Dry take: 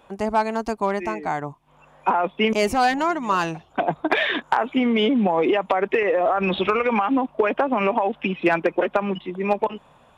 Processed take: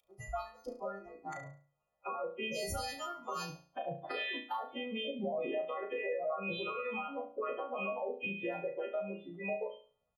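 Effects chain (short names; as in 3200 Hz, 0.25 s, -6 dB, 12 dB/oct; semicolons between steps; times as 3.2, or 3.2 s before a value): frequency quantiser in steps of 2 st; 0.65–1.33 LPF 2600 Hz 6 dB/oct; spectral noise reduction 24 dB; comb 1.6 ms, depth 99%; harmonic-percussive split harmonic -17 dB; dynamic EQ 1600 Hz, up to -7 dB, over -45 dBFS, Q 1.4; in parallel at -1 dB: compressor, threshold -35 dBFS, peak gain reduction 17 dB; on the sum: limiter -24 dBFS, peak gain reduction 13 dB; on a send: flutter echo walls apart 6 m, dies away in 0.41 s; on the sum: gain -5.5 dB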